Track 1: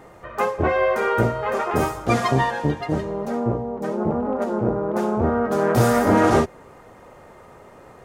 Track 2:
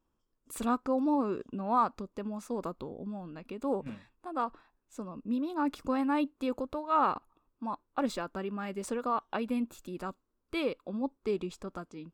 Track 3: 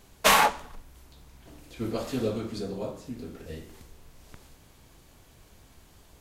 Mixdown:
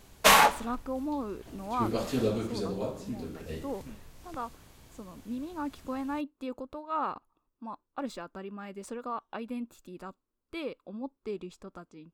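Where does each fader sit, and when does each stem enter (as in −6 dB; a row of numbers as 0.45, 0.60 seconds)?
muted, −5.0 dB, +0.5 dB; muted, 0.00 s, 0.00 s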